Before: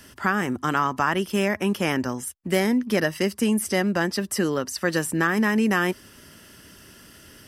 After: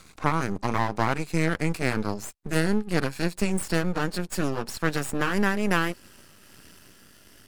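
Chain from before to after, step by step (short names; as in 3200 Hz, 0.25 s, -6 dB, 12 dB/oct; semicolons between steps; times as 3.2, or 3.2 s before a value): gliding pitch shift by -4.5 st ending unshifted; half-wave rectifier; gain +1.5 dB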